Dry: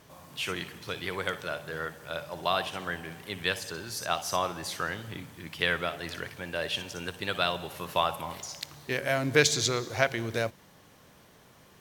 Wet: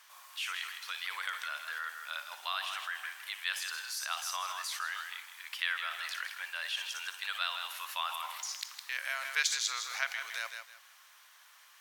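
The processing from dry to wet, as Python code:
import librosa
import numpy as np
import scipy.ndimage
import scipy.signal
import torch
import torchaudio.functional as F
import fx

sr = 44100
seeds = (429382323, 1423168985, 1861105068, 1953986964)

p1 = scipy.signal.sosfilt(scipy.signal.butter(4, 1100.0, 'highpass', fs=sr, output='sos'), x)
p2 = fx.echo_feedback(p1, sr, ms=160, feedback_pct=25, wet_db=-11.0)
p3 = fx.over_compress(p2, sr, threshold_db=-40.0, ratio=-1.0)
p4 = p2 + F.gain(torch.from_numpy(p3), -2.5).numpy()
y = F.gain(torch.from_numpy(p4), -5.5).numpy()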